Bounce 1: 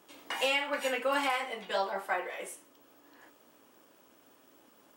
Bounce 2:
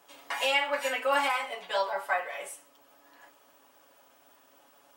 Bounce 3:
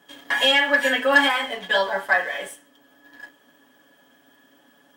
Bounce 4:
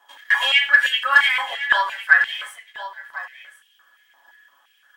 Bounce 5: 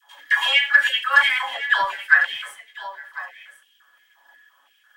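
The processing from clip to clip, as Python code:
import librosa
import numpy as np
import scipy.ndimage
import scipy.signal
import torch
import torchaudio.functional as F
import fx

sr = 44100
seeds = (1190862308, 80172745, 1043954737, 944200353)

y1 = fx.low_shelf_res(x, sr, hz=490.0, db=-7.0, q=1.5)
y1 = y1 + 0.78 * np.pad(y1, (int(7.1 * sr / 1000.0), 0))[:len(y1)]
y2 = fx.small_body(y1, sr, hz=(210.0, 1700.0, 3200.0), ring_ms=25, db=17)
y2 = fx.leveller(y2, sr, passes=1)
y3 = y2 + 10.0 ** (-13.5 / 20.0) * np.pad(y2, (int(1051 * sr / 1000.0), 0))[:len(y2)]
y3 = fx.filter_held_highpass(y3, sr, hz=5.8, low_hz=910.0, high_hz=2900.0)
y3 = y3 * 10.0 ** (-3.5 / 20.0)
y4 = fx.dispersion(y3, sr, late='lows', ms=126.0, hz=440.0)
y4 = y4 * 10.0 ** (-1.0 / 20.0)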